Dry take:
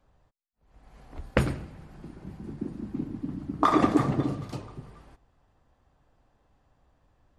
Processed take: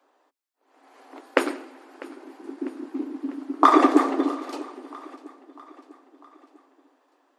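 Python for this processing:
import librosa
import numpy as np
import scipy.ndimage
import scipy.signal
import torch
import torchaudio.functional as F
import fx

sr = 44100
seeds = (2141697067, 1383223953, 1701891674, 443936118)

p1 = scipy.signal.sosfilt(scipy.signal.cheby1(6, 3, 260.0, 'highpass', fs=sr, output='sos'), x)
p2 = p1 + fx.echo_feedback(p1, sr, ms=648, feedback_pct=53, wet_db=-20.5, dry=0)
y = p2 * librosa.db_to_amplitude(7.5)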